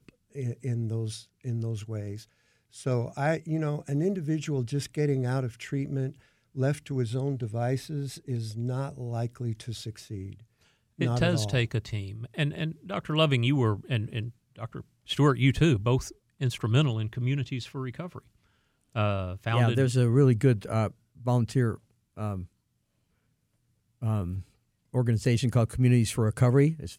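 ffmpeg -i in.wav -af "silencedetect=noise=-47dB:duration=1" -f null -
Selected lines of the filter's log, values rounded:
silence_start: 22.45
silence_end: 24.02 | silence_duration: 1.56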